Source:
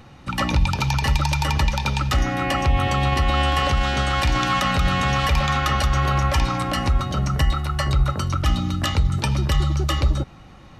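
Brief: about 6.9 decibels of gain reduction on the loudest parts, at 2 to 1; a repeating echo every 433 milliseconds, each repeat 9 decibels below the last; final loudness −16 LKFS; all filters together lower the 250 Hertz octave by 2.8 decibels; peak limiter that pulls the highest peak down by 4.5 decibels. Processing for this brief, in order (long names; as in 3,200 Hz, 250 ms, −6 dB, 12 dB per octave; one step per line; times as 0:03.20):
parametric band 250 Hz −4.5 dB
downward compressor 2 to 1, threshold −27 dBFS
brickwall limiter −18.5 dBFS
repeating echo 433 ms, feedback 35%, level −9 dB
level +12 dB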